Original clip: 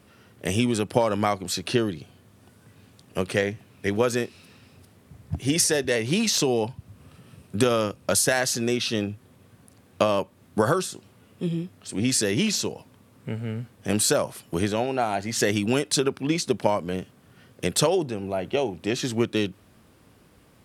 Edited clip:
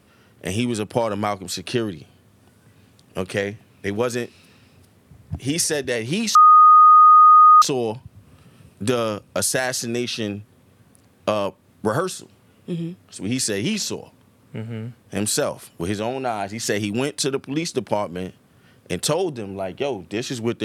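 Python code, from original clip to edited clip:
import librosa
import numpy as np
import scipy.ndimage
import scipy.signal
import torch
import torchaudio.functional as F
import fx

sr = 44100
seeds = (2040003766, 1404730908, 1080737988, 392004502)

y = fx.edit(x, sr, fx.insert_tone(at_s=6.35, length_s=1.27, hz=1240.0, db=-6.5), tone=tone)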